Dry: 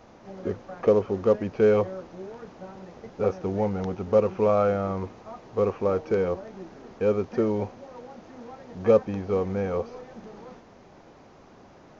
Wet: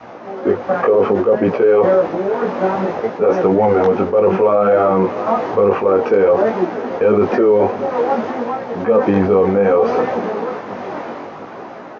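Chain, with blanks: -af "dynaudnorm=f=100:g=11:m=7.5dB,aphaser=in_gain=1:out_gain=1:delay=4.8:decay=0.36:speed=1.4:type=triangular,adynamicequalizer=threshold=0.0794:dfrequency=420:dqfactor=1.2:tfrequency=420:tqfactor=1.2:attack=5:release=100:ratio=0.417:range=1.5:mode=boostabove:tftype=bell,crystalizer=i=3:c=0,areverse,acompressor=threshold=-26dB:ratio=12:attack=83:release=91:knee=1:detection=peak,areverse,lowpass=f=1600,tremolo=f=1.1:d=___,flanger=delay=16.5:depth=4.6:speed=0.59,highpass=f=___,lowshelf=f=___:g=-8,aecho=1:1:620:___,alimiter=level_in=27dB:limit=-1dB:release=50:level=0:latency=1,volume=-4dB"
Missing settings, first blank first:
0.4, 150, 300, 0.0794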